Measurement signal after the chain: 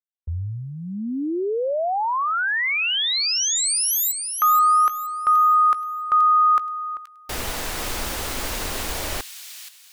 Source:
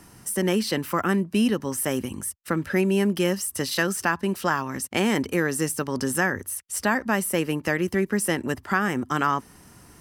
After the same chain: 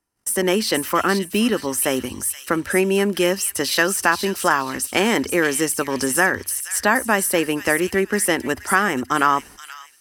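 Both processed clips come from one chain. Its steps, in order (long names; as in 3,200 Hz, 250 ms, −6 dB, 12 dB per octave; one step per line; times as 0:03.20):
noise gate −44 dBFS, range −34 dB
parametric band 150 Hz −11 dB 1.1 octaves
on a send: delay with a high-pass on its return 476 ms, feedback 31%, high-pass 3,000 Hz, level −6.5 dB
on the sum: level +6.5 dB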